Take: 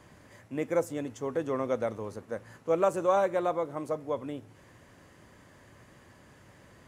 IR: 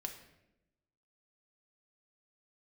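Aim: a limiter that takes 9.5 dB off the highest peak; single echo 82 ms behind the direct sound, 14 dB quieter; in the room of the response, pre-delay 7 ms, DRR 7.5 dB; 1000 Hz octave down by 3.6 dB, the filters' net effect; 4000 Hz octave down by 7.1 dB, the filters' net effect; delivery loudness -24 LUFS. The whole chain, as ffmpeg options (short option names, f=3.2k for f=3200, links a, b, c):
-filter_complex "[0:a]equalizer=f=1k:t=o:g=-4.5,equalizer=f=4k:t=o:g=-9,alimiter=limit=-23.5dB:level=0:latency=1,aecho=1:1:82:0.2,asplit=2[a][b];[1:a]atrim=start_sample=2205,adelay=7[c];[b][c]afir=irnorm=-1:irlink=0,volume=-6dB[d];[a][d]amix=inputs=2:normalize=0,volume=10.5dB"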